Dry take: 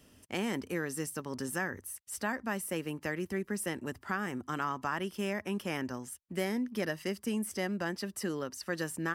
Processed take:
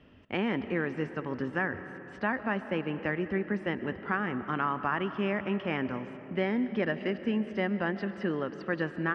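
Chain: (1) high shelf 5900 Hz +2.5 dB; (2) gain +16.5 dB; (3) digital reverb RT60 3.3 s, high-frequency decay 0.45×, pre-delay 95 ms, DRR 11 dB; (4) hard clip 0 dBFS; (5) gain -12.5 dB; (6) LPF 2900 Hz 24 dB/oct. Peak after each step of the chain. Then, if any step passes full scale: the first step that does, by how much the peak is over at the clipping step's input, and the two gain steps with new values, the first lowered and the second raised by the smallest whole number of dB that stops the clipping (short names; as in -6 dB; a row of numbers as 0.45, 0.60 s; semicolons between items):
-18.5, -2.0, -2.0, -2.0, -14.5, -14.5 dBFS; no overload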